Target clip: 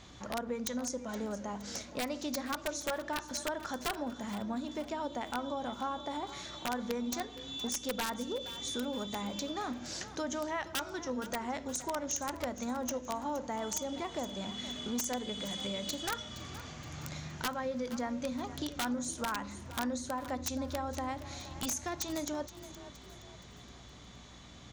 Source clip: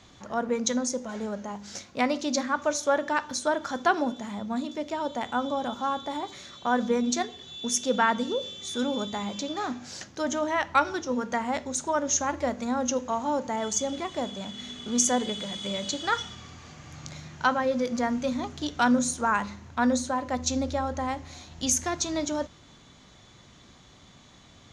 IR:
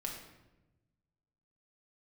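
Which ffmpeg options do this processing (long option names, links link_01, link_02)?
-filter_complex "[0:a]acompressor=threshold=-36dB:ratio=3,aeval=exprs='(mod(18.8*val(0)+1,2)-1)/18.8':channel_layout=same,aeval=exprs='val(0)+0.00126*(sin(2*PI*60*n/s)+sin(2*PI*2*60*n/s)/2+sin(2*PI*3*60*n/s)/3+sin(2*PI*4*60*n/s)/4+sin(2*PI*5*60*n/s)/5)':channel_layout=same,asplit=2[link_01][link_02];[link_02]asplit=4[link_03][link_04][link_05][link_06];[link_03]adelay=469,afreqshift=31,volume=-14.5dB[link_07];[link_04]adelay=938,afreqshift=62,volume=-21.4dB[link_08];[link_05]adelay=1407,afreqshift=93,volume=-28.4dB[link_09];[link_06]adelay=1876,afreqshift=124,volume=-35.3dB[link_10];[link_07][link_08][link_09][link_10]amix=inputs=4:normalize=0[link_11];[link_01][link_11]amix=inputs=2:normalize=0"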